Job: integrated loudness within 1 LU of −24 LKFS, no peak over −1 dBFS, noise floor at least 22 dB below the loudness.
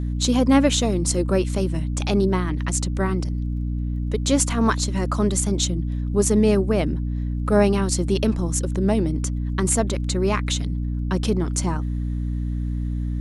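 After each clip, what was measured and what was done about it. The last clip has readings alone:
crackle rate 22 per second; mains hum 60 Hz; hum harmonics up to 300 Hz; level of the hum −22 dBFS; integrated loudness −22.5 LKFS; sample peak −3.5 dBFS; target loudness −24.0 LKFS
→ click removal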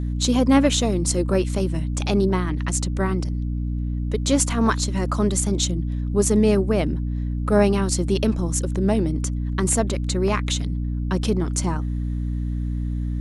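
crackle rate 0.15 per second; mains hum 60 Hz; hum harmonics up to 300 Hz; level of the hum −22 dBFS
→ hum removal 60 Hz, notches 5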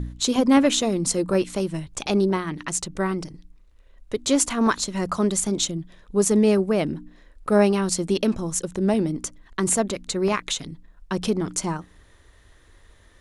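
mains hum none found; integrated loudness −23.0 LKFS; sample peak −4.5 dBFS; target loudness −24.0 LKFS
→ level −1 dB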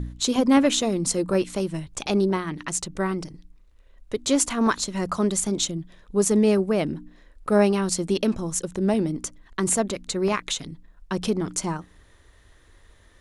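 integrated loudness −24.0 LKFS; sample peak −5.5 dBFS; background noise floor −55 dBFS

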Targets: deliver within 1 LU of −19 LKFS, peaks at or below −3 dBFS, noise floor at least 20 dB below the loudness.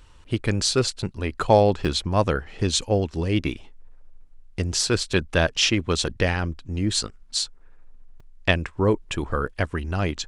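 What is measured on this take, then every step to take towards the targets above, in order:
number of dropouts 4; longest dropout 3.8 ms; integrated loudness −24.0 LKFS; sample peak −3.5 dBFS; target loudness −19.0 LKFS
→ repair the gap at 0:01.85/0:05.57/0:08.20/0:09.47, 3.8 ms
level +5 dB
brickwall limiter −3 dBFS

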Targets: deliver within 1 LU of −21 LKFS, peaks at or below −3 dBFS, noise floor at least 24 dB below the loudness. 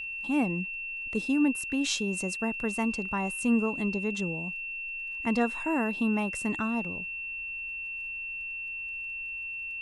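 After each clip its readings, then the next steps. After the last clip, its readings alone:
crackle rate 31 per second; interfering tone 2,700 Hz; level of the tone −34 dBFS; integrated loudness −30.0 LKFS; sample peak −12.5 dBFS; target loudness −21.0 LKFS
→ click removal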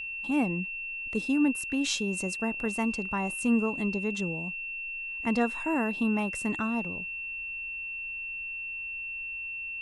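crackle rate 0 per second; interfering tone 2,700 Hz; level of the tone −34 dBFS
→ notch filter 2,700 Hz, Q 30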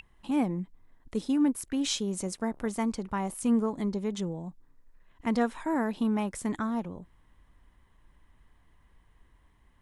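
interfering tone none found; integrated loudness −30.5 LKFS; sample peak −13.5 dBFS; target loudness −21.0 LKFS
→ level +9.5 dB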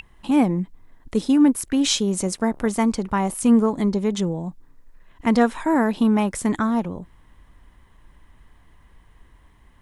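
integrated loudness −21.0 LKFS; sample peak −4.0 dBFS; background noise floor −54 dBFS

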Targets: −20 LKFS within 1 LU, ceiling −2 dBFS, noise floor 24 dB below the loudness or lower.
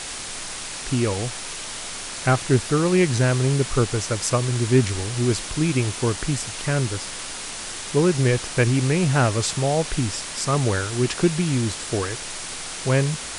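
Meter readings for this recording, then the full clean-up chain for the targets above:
background noise floor −33 dBFS; target noise floor −47 dBFS; integrated loudness −22.5 LKFS; sample peak −6.0 dBFS; target loudness −20.0 LKFS
→ noise reduction from a noise print 14 dB
level +2.5 dB

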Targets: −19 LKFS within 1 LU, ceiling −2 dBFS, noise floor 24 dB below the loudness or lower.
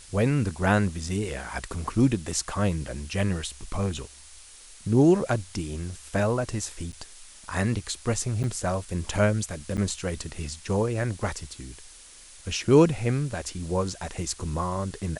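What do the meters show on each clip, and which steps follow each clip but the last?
number of dropouts 3; longest dropout 8.9 ms; background noise floor −49 dBFS; target noise floor −51 dBFS; integrated loudness −27.0 LKFS; sample peak −6.5 dBFS; target loudness −19.0 LKFS
→ repair the gap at 0:06.92/0:08.43/0:09.77, 8.9 ms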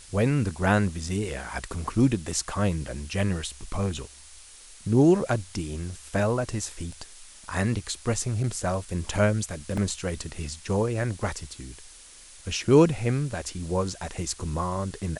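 number of dropouts 0; background noise floor −49 dBFS; target noise floor −51 dBFS
→ noise reduction from a noise print 6 dB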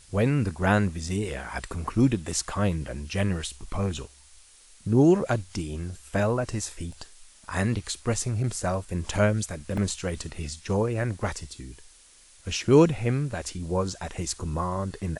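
background noise floor −54 dBFS; integrated loudness −27.0 LKFS; sample peak −6.5 dBFS; target loudness −19.0 LKFS
→ level +8 dB
brickwall limiter −2 dBFS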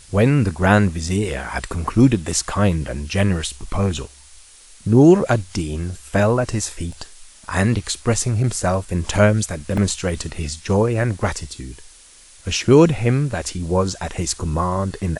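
integrated loudness −19.5 LKFS; sample peak −2.0 dBFS; background noise floor −46 dBFS

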